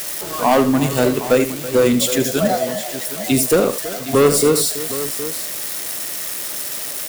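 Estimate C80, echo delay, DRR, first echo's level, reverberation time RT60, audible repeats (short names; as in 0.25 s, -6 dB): none, 78 ms, none, -11.0 dB, none, 3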